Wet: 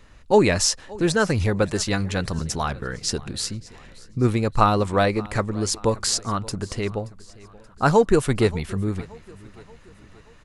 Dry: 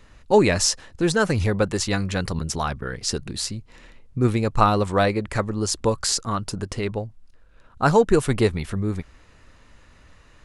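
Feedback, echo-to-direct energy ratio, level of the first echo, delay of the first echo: 50%, -20.5 dB, -21.5 dB, 578 ms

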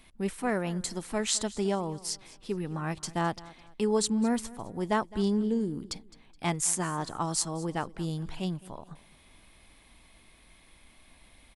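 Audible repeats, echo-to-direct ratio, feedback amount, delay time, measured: 2, -19.5 dB, 33%, 211 ms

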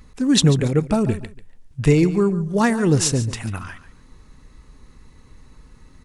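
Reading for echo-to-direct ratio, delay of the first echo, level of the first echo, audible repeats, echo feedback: -14.5 dB, 142 ms, -14.5 dB, 2, 22%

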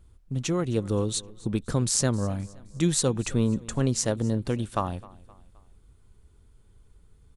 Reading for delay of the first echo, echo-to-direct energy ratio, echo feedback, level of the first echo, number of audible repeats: 261 ms, -20.5 dB, 44%, -21.5 dB, 2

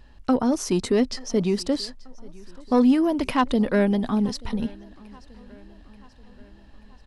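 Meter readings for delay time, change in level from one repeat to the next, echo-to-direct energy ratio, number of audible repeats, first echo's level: 883 ms, -5.0 dB, -22.5 dB, 3, -24.0 dB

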